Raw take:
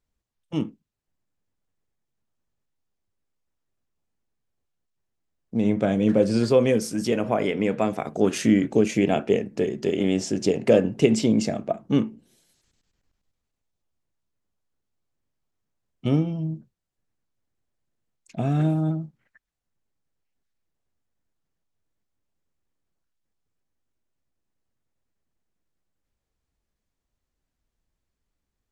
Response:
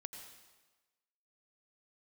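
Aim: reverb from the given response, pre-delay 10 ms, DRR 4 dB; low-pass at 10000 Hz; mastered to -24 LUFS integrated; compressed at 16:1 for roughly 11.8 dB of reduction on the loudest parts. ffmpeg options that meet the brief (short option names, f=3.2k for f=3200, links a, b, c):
-filter_complex "[0:a]lowpass=10k,acompressor=threshold=-24dB:ratio=16,asplit=2[a][b];[1:a]atrim=start_sample=2205,adelay=10[c];[b][c]afir=irnorm=-1:irlink=0,volume=-0.5dB[d];[a][d]amix=inputs=2:normalize=0,volume=5dB"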